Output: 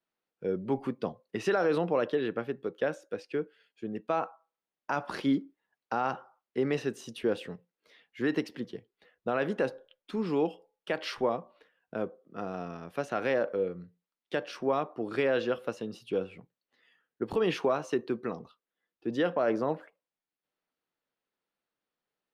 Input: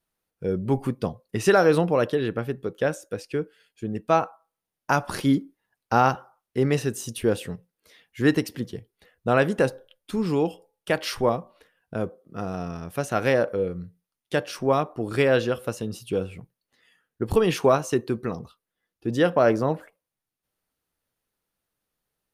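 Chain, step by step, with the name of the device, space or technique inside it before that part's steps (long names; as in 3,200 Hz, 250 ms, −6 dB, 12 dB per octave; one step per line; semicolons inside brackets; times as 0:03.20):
DJ mixer with the lows and highs turned down (three-way crossover with the lows and the highs turned down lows −17 dB, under 180 Hz, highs −17 dB, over 4,800 Hz; brickwall limiter −14 dBFS, peak gain reduction 8 dB)
level −4 dB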